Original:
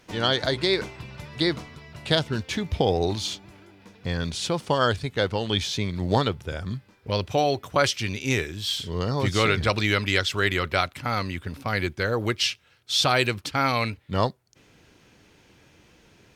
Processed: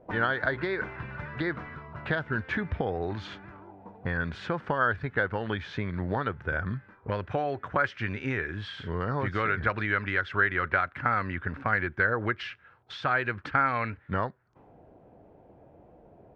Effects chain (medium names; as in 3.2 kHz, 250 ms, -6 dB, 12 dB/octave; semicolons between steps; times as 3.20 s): compression, threshold -27 dBFS, peak gain reduction 11.5 dB; touch-sensitive low-pass 580–1600 Hz up, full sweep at -36.5 dBFS